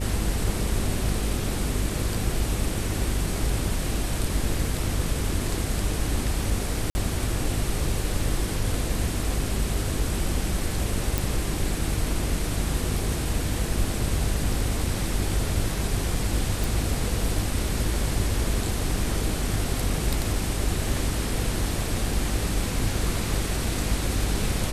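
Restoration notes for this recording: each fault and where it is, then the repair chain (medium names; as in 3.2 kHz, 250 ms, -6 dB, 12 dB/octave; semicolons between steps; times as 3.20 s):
buzz 50 Hz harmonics 10 -30 dBFS
6.90–6.95 s: dropout 50 ms
11.18 s: pop
16.64 s: pop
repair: de-click; de-hum 50 Hz, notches 10; interpolate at 6.90 s, 50 ms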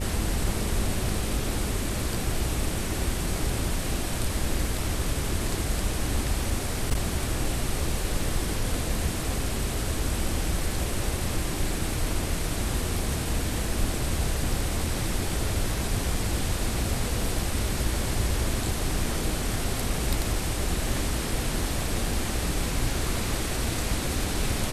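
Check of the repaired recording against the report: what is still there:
nothing left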